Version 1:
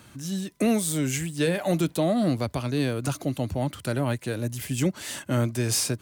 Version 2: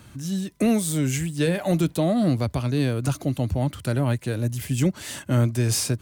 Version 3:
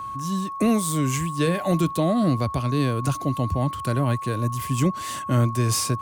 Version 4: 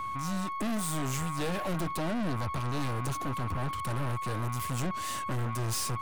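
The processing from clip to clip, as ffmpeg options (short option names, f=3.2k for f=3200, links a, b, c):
-af "lowshelf=f=130:g=10.5"
-af "aeval=exprs='val(0)+0.0316*sin(2*PI*1100*n/s)':c=same"
-af "aeval=exprs='(tanh(31.6*val(0)+0.55)-tanh(0.55))/31.6':c=same"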